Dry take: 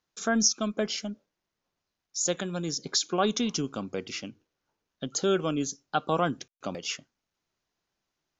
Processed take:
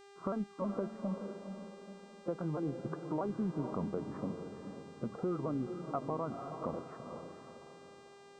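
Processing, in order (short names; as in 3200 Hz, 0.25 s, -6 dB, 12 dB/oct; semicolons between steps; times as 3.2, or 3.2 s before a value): repeated pitch sweeps -3 st, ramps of 0.321 s; steep low-pass 1300 Hz 48 dB/oct; compressor, threshold -34 dBFS, peak gain reduction 13 dB; on a send: diffused feedback echo 0.483 s, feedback 40%, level -8 dB; on the sum: buzz 400 Hz, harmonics 22, -60 dBFS -6 dB/oct; in parallel at -0.5 dB: limiter -31 dBFS, peak gain reduction 9 dB; on the sum: gain -3 dB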